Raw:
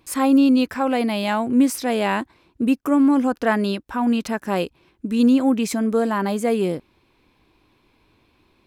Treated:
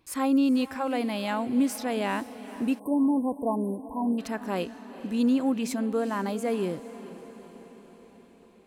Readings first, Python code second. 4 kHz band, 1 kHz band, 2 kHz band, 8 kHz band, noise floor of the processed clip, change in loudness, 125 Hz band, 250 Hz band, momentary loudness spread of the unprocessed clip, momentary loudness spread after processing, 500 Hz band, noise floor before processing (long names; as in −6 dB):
−8.0 dB, −7.5 dB, −9.0 dB, −7.5 dB, −54 dBFS, −7.5 dB, −7.5 dB, −7.5 dB, 9 LU, 15 LU, −7.5 dB, −62 dBFS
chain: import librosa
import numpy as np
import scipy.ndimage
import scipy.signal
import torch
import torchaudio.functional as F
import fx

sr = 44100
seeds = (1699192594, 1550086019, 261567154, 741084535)

y = fx.echo_diffused(x, sr, ms=456, feedback_pct=60, wet_db=-15.0)
y = fx.spec_erase(y, sr, start_s=2.79, length_s=1.4, low_hz=1100.0, high_hz=8100.0)
y = y * 10.0 ** (-7.5 / 20.0)